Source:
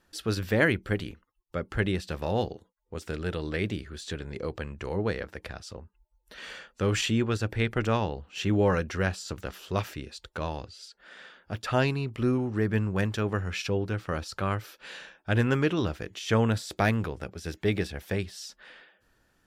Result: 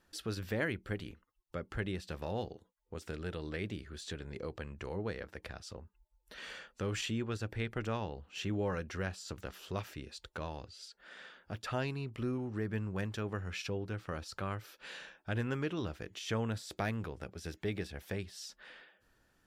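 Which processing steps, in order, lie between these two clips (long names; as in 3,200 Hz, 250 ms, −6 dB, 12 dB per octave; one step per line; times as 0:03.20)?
downward compressor 1.5 to 1, threshold −41 dBFS, peak gain reduction 8.5 dB
level −3.5 dB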